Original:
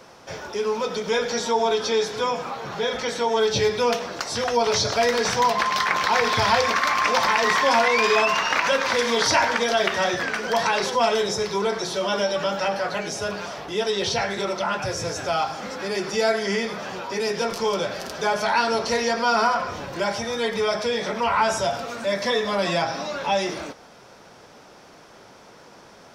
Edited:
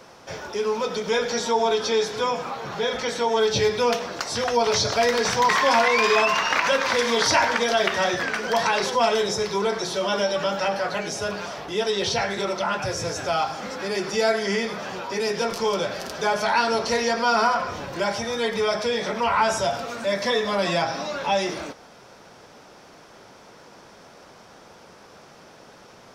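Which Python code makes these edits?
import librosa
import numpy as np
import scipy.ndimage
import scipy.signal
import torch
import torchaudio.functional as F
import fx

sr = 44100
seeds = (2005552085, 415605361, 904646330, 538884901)

y = fx.edit(x, sr, fx.cut(start_s=5.49, length_s=2.0), tone=tone)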